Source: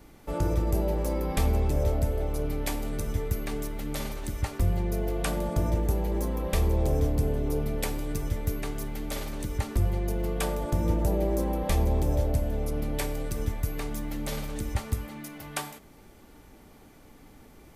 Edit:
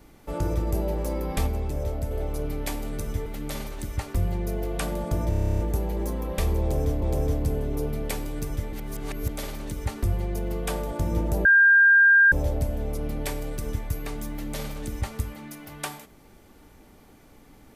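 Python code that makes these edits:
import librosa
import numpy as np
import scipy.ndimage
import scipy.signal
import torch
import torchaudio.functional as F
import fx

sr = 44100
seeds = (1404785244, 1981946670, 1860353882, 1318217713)

y = fx.edit(x, sr, fx.clip_gain(start_s=1.47, length_s=0.64, db=-3.5),
    fx.cut(start_s=3.26, length_s=0.45),
    fx.stutter(start_s=5.74, slice_s=0.03, count=11),
    fx.repeat(start_s=6.75, length_s=0.42, count=2),
    fx.reverse_span(start_s=8.46, length_s=0.56),
    fx.bleep(start_s=11.18, length_s=0.87, hz=1600.0, db=-12.5), tone=tone)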